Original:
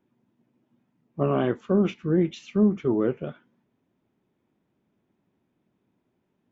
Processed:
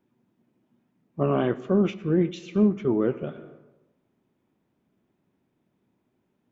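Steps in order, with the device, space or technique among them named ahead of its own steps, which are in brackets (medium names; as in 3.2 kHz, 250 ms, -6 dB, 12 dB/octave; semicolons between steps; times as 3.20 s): compressed reverb return (on a send at -8 dB: reverberation RT60 0.95 s, pre-delay 75 ms + compression, threshold -29 dBFS, peak gain reduction 13 dB)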